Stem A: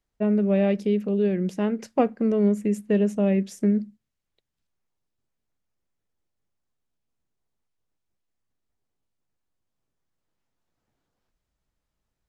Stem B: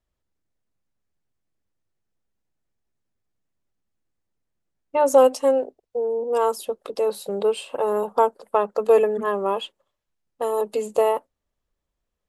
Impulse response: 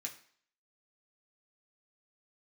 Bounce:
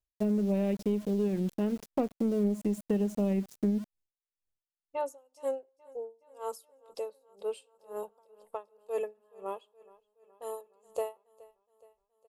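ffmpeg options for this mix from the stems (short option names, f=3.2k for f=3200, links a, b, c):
-filter_complex "[0:a]aeval=exprs='val(0)*gte(abs(val(0)),0.0178)':c=same,aeval=exprs='0.447*(cos(1*acos(clip(val(0)/0.447,-1,1)))-cos(1*PI/2))+0.0178*(cos(7*acos(clip(val(0)/0.447,-1,1)))-cos(7*PI/2))':c=same,volume=0dB[a];[1:a]equalizer=f=230:w=1:g=-10.5,aeval=exprs='val(0)*pow(10,-39*(0.5-0.5*cos(2*PI*2*n/s))/20)':c=same,volume=-6dB,asplit=3[b][c][d];[c]volume=-18dB[e];[d]volume=-22.5dB[f];[2:a]atrim=start_sample=2205[g];[e][g]afir=irnorm=-1:irlink=0[h];[f]aecho=0:1:421|842|1263|1684|2105|2526|2947|3368|3789:1|0.57|0.325|0.185|0.106|0.0602|0.0343|0.0195|0.0111[i];[a][b][h][i]amix=inputs=4:normalize=0,equalizer=f=1.5k:w=0.47:g=-8,acompressor=threshold=-26dB:ratio=3"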